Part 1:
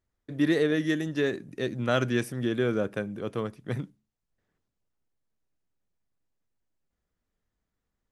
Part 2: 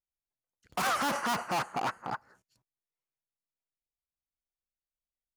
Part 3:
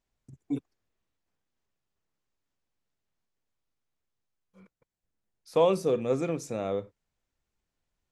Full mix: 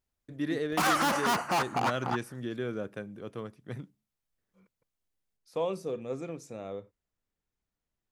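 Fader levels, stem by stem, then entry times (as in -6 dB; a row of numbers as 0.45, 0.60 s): -8.0, +3.0, -8.5 dB; 0.00, 0.00, 0.00 s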